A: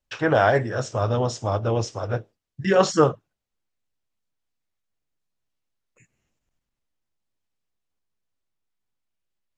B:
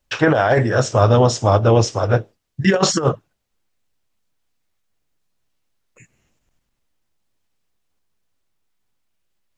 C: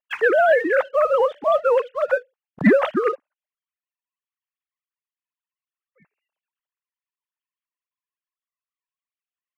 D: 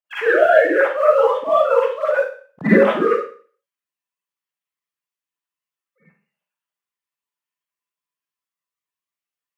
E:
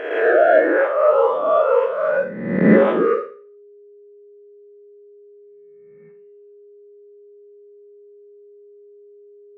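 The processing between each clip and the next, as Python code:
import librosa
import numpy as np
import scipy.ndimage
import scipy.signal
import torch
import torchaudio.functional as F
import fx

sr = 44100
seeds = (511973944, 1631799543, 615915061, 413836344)

y1 = fx.over_compress(x, sr, threshold_db=-20.0, ratio=-0.5)
y1 = y1 * 10.0 ** (8.0 / 20.0)
y2 = fx.sine_speech(y1, sr)
y2 = fx.leveller(y2, sr, passes=1)
y2 = fx.dynamic_eq(y2, sr, hz=1500.0, q=0.77, threshold_db=-25.0, ratio=4.0, max_db=4)
y2 = y2 * 10.0 ** (-7.5 / 20.0)
y3 = scipy.signal.sosfilt(scipy.signal.butter(2, 72.0, 'highpass', fs=sr, output='sos'), y2)
y3 = fx.rev_schroeder(y3, sr, rt60_s=0.44, comb_ms=38, drr_db=-9.5)
y3 = y3 * 10.0 ** (-6.5 / 20.0)
y4 = fx.spec_swells(y3, sr, rise_s=1.0)
y4 = fx.lowpass(y4, sr, hz=1400.0, slope=6)
y4 = y4 + 10.0 ** (-41.0 / 20.0) * np.sin(2.0 * np.pi * 410.0 * np.arange(len(y4)) / sr)
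y4 = y4 * 10.0 ** (-2.5 / 20.0)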